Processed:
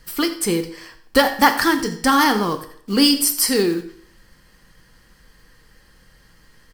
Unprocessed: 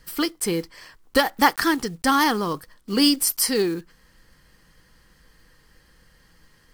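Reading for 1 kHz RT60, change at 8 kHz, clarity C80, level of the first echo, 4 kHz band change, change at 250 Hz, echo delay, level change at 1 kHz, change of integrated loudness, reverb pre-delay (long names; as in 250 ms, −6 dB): 0.60 s, +3.5 dB, 13.5 dB, −17.0 dB, +4.0 dB, +4.0 dB, 86 ms, +3.5 dB, +4.0 dB, 9 ms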